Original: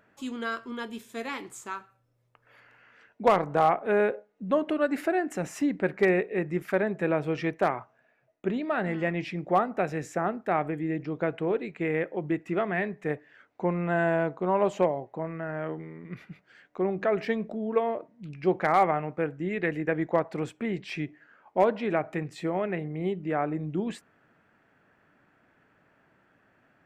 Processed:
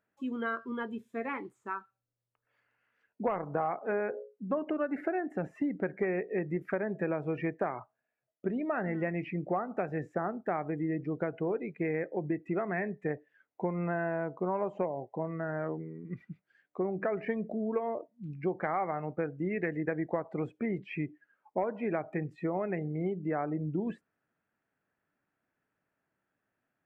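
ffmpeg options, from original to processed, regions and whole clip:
-filter_complex "[0:a]asettb=1/sr,asplit=3[a][b][c];[a]atrim=end=3.794[d];[b]atrim=start=3.79:end=4.57,asetpts=PTS-STARTPTS,afade=t=in:d=0.004:c=qsin,afade=t=out:st=0.776:d=0.004:c=qsin,bass=f=250:g=-3,treble=f=4k:g=-7,bandreject=f=60:t=h:w=6,bandreject=f=120:t=h:w=6,bandreject=f=180:t=h:w=6,bandreject=f=240:t=h:w=6,bandreject=f=300:t=h:w=6,bandreject=f=360:t=h:w=6,bandreject=f=420:t=h:w=6,bandreject=f=480:t=h:w=6,bandreject=f=540:t=h:w=6[e];[c]atrim=start=4.566[f];[d][e]acrossfade=d=0.004:c1=hsin:c2=qsin[g];[g][f]acrossfade=d=0.004:c1=qsin:c2=hsin,acrossover=split=2700[h][i];[i]acompressor=threshold=-55dB:ratio=4:attack=1:release=60[j];[h][j]amix=inputs=2:normalize=0,afftdn=nr=19:nf=-41,acompressor=threshold=-28dB:ratio=6"

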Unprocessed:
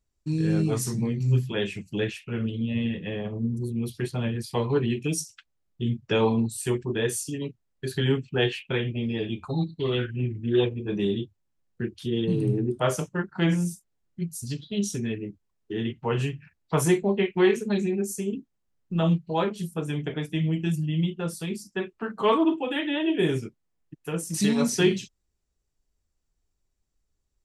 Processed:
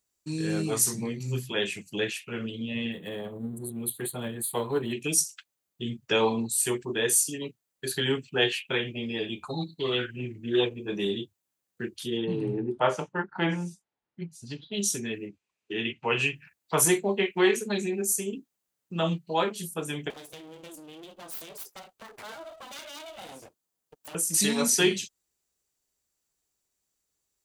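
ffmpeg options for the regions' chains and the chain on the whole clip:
-filter_complex "[0:a]asettb=1/sr,asplit=3[a][b][c];[a]atrim=end=2.924[d];[b]atrim=start=2.92:end=4.93,asetpts=PTS-STARTPTS,afade=t=in:d=0.004:c=qsin,afade=t=out:st=2.006:d=0.004:c=qsin,aeval=exprs='if(lt(val(0),0),0.708*val(0),val(0))':c=same,asuperstop=centerf=5300:order=4:qfactor=0.83,highshelf=f=3.3k:t=q:w=3:g=8[e];[c]atrim=start=4.926[f];[d][e]acrossfade=d=0.004:c1=hsin:c2=qsin[g];[g][f]acrossfade=d=0.004:c1=qsin:c2=hsin,asettb=1/sr,asplit=3[h][i][j];[h]atrim=end=12.174[k];[i]atrim=start=12.17:end=14.74,asetpts=PTS-STARTPTS,afade=t=in:d=0.004:c=qsin,afade=t=out:st=2.566:d=0.004:c=qsin,lowpass=2.7k,equalizer=f=870:t=o:w=0.27:g=7.5[l];[j]atrim=start=14.736[m];[k][l]acrossfade=d=0.004:c1=hsin:c2=qsin[n];[n][m]acrossfade=d=0.004:c1=qsin:c2=hsin,asettb=1/sr,asplit=3[o][p][q];[o]atrim=end=15.274[r];[p]atrim=start=15.27:end=16.35,asetpts=PTS-STARTPTS,afade=t=in:d=0.004:c=qsin,afade=t=out:st=1.076:d=0.004:c=qsin,lowpass=6.3k,equalizer=f=2.5k:w=3.7:g=12[s];[q]atrim=start=16.346[t];[r][s]acrossfade=d=0.004:c1=hsin:c2=qsin[u];[u][t]acrossfade=d=0.004:c1=qsin:c2=hsin,asettb=1/sr,asplit=3[v][w][x];[v]atrim=end=20.104[y];[w]atrim=start=20.1:end=24.15,asetpts=PTS-STARTPTS,afade=t=in:d=0.004:c=qsin,afade=t=out:st=4.046:d=0.004:c=qsin,aeval=exprs='abs(val(0))':c=same,equalizer=f=2.1k:t=o:w=0.86:g=-5,acompressor=threshold=-37dB:ratio=4:attack=3.2:release=140:knee=1:detection=peak[z];[x]atrim=start=24.146[aa];[y][z]acrossfade=d=0.004:c1=hsin:c2=qsin[ab];[ab][aa]acrossfade=d=0.004:c1=qsin:c2=hsin,highpass=f=450:p=1,highshelf=f=6.1k:g=11,bandreject=f=5.4k:w=21,volume=1.5dB"

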